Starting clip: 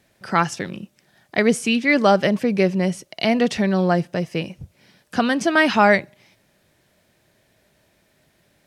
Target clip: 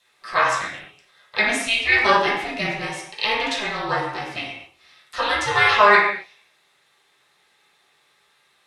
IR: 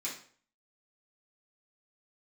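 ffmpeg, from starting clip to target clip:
-filter_complex "[0:a]highpass=820,aeval=exprs='val(0)*sin(2*PI*210*n/s)':channel_layout=same[link_01];[1:a]atrim=start_sample=2205,atrim=end_sample=6174,asetrate=22932,aresample=44100[link_02];[link_01][link_02]afir=irnorm=-1:irlink=0"

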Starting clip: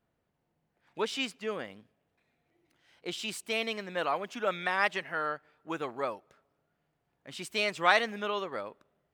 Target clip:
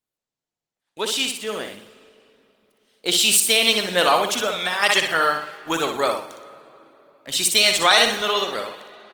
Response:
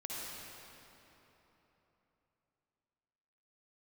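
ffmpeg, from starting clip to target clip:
-filter_complex "[0:a]agate=range=-18dB:threshold=-60dB:ratio=16:detection=peak,dynaudnorm=framelen=900:gausssize=5:maxgain=10.5dB,bandreject=frequency=4900:width=26,aexciter=amount=3.6:drive=3.6:freq=3200,highpass=frequency=170:poles=1,highshelf=frequency=2100:gain=3.5,asplit=3[link_01][link_02][link_03];[link_01]afade=type=out:start_time=4.34:duration=0.02[link_04];[link_02]acompressor=threshold=-25dB:ratio=6,afade=type=in:start_time=4.34:duration=0.02,afade=type=out:start_time=4.82:duration=0.02[link_05];[link_03]afade=type=in:start_time=4.82:duration=0.02[link_06];[link_04][link_05][link_06]amix=inputs=3:normalize=0,aecho=1:1:61|122|183|244:0.501|0.185|0.0686|0.0254,asplit=2[link_07][link_08];[1:a]atrim=start_sample=2205,adelay=44[link_09];[link_08][link_09]afir=irnorm=-1:irlink=0,volume=-18dB[link_10];[link_07][link_10]amix=inputs=2:normalize=0,alimiter=level_in=5.5dB:limit=-1dB:release=50:level=0:latency=1,volume=-2dB" -ar 48000 -c:a libopus -b:a 20k

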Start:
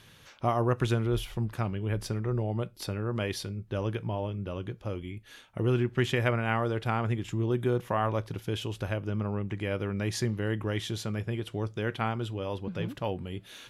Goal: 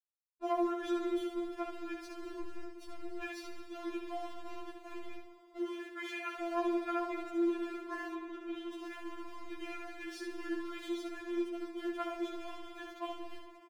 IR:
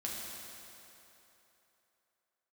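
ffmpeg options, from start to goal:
-filter_complex "[0:a]aeval=exprs='val(0)*gte(abs(val(0)),0.015)':channel_layout=same,asettb=1/sr,asplit=3[link_01][link_02][link_03];[link_01]atrim=end=5.584[link_04];[link_02]atrim=start=5.58:end=6.41,asetpts=PTS-STARTPTS,afade=type=in:duration=0.004:curve=qsin,afade=type=out:start_time=0.826:duration=0.004:curve=qsin,afreqshift=23[link_05];[link_03]atrim=start=6.406[link_06];[link_04][link_05]acrossfade=duration=0.004:curve1=hsin:curve2=qsin[link_07];[link_07][link_06]acrossfade=duration=0.004:curve1=qsin:curve2=hsin,aecho=1:1:70:0.501,asettb=1/sr,asplit=3[link_08][link_09][link_10];[link_08]atrim=end=2.404[link_11];[link_09]atrim=start=2.4:end=3.22,asetpts=PTS-STARTPTS,afade=type=in:duration=0.004:curve=qsin,afade=type=out:start_time=0.816:duration=0.004:curve=qsin,aeval=exprs='(tanh(50.1*val(0)+0.7)-tanh(0.7))/50.1':channel_layout=same[link_12];[link_10]atrim=start=3.216[link_13];[link_11][link_12]acrossfade=duration=0.004:curve1=hsin:curve2=qsin[link_14];[link_14][link_13]acrossfade=duration=0.004:curve1=qsin:curve2=hsin,bandreject=frequency=60:width_type=h:width=6,bandreject=frequency=120:width_type=h:width=6,bandreject=frequency=180:width_type=h:width=6,bandreject=frequency=240:width_type=h:width=6,bandreject=frequency=300:width_type=h:width=6,bandreject=frequency=360:width_type=h:width=6,asplit=2[link_15][link_16];[1:a]atrim=start_sample=2205,adelay=139[link_17];[link_16][link_17]afir=irnorm=-1:irlink=0,volume=-10.5dB[link_18];[link_15][link_18]amix=inputs=2:normalize=0,asettb=1/sr,asplit=3[link_19][link_20][link_21];[link_19]atrim=end=8.144[link_22];[link_20]atrim=start=8.14:end=8.73,asetpts=PTS-STARTPTS,afade=type=in:duration=0.004:curve=qsin,afade=type=out:start_time=0.586:duration=0.004:curve=qsin,acrossover=split=3400[link_23][link_24];[link_24]acompressor=threshold=-57dB:ratio=4:attack=1:release=60[link_25];[link_23][link_25]amix=inputs=2:normalize=0[link_26];[link_21]atrim=start=8.726[link_27];[link_22][link_26]acrossfade=duration=0.004:curve1=hsin:curve2=qsin[link_28];[link_28][link_27]acrossfade=duration=0.004:curve1=qsin:curve2=hsin,aemphasis=mode=reproduction:type=50kf,afftfilt=real='re*4*eq(mod(b,16),0)':imag='im*4*eq(mod(b,16),0)':win_size=2048:overlap=0.75,volume=-5dB"

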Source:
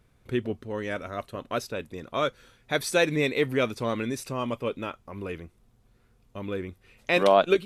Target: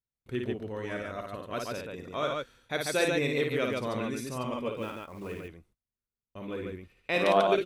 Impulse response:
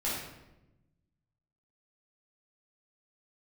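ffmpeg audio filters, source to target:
-filter_complex "[0:a]agate=range=-31dB:threshold=-54dB:ratio=16:detection=peak,asettb=1/sr,asplit=3[link_01][link_02][link_03];[link_01]atrim=end=4.764[link_04];[link_02]atrim=start=4.76:end=5.34,asetpts=PTS-STARTPTS,afade=type=in:duration=0.004:curve=qsin,afade=type=out:start_time=0.576:duration=0.004:curve=qsin,acrusher=bits=5:mode=log:mix=0:aa=0.000001[link_05];[link_03]atrim=start=5.336[link_06];[link_04][link_05]acrossfade=duration=0.004:curve1=hsin:curve2=qsin[link_07];[link_07][link_06]acrossfade=duration=0.004:curve1=qsin:curve2=hsin,aecho=1:1:55.39|142.9:0.631|0.708,volume=-6dB"

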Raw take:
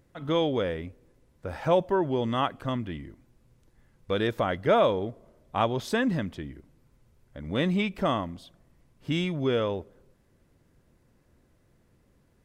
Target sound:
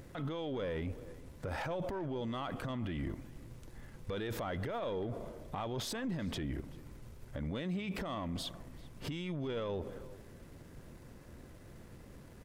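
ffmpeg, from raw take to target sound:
ffmpeg -i in.wav -filter_complex "[0:a]aeval=exprs='if(lt(val(0),0),0.708*val(0),val(0))':channel_layout=same,asettb=1/sr,asplit=3[link_01][link_02][link_03];[link_01]atrim=end=7.524[link_04];[link_02]atrim=start=7.52:end=7.99,asetpts=PTS-STARTPTS,afade=type=in:duration=0.004:curve=qsin,afade=type=out:start_time=0.466:duration=0.004:curve=qsin,highpass=54[link_05];[link_03]atrim=start=7.986[link_06];[link_04][link_05]acrossfade=duration=0.004:curve1=hsin:curve2=qsin[link_07];[link_07][link_06]acrossfade=duration=0.004:curve1=qsin:curve2=hsin,alimiter=level_in=19dB:limit=-24dB:level=0:latency=1:release=49,volume=-19dB,asplit=2[link_08][link_09];[link_09]adelay=390.7,volume=-19dB,highshelf=frequency=4000:gain=-8.79[link_10];[link_08][link_10]amix=inputs=2:normalize=0,volume=12.5dB" out.wav

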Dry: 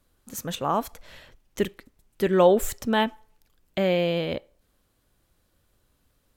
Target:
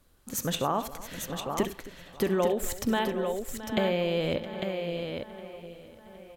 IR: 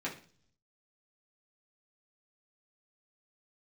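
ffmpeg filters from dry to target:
-filter_complex "[0:a]asplit=2[link_01][link_02];[link_02]adelay=763,lowpass=frequency=4800:poles=1,volume=-21dB,asplit=2[link_03][link_04];[link_04]adelay=763,lowpass=frequency=4800:poles=1,volume=0.54,asplit=2[link_05][link_06];[link_06]adelay=763,lowpass=frequency=4800:poles=1,volume=0.54,asplit=2[link_07][link_08];[link_08]adelay=763,lowpass=frequency=4800:poles=1,volume=0.54[link_09];[link_03][link_05][link_07][link_09]amix=inputs=4:normalize=0[link_10];[link_01][link_10]amix=inputs=2:normalize=0,acompressor=threshold=-27dB:ratio=6,asplit=2[link_11][link_12];[link_12]aecho=0:1:67|98|267|668|851:0.211|0.1|0.126|0.178|0.501[link_13];[link_11][link_13]amix=inputs=2:normalize=0,volume=3dB"

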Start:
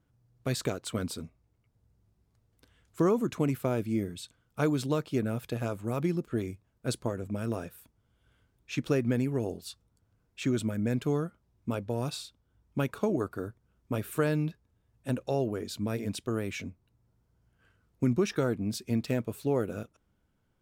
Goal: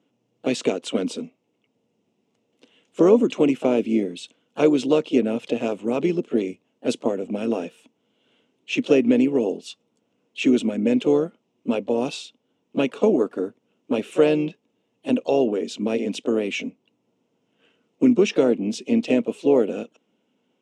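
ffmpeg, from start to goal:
ffmpeg -i in.wav -filter_complex "[0:a]highpass=frequency=210:width=0.5412,highpass=frequency=210:width=1.3066,equalizer=frequency=250:width_type=q:width=4:gain=5,equalizer=frequency=460:width_type=q:width=4:gain=5,equalizer=frequency=1200:width_type=q:width=4:gain=-6,equalizer=frequency=1600:width_type=q:width=4:gain=-10,equalizer=frequency=2800:width_type=q:width=4:gain=9,equalizer=frequency=4500:width_type=q:width=4:gain=-8,lowpass=frequency=7000:width=0.5412,lowpass=frequency=7000:width=1.3066,asplit=2[link_01][link_02];[link_02]asetrate=52444,aresample=44100,atempo=0.840896,volume=-12dB[link_03];[link_01][link_03]amix=inputs=2:normalize=0,volume=8dB" out.wav

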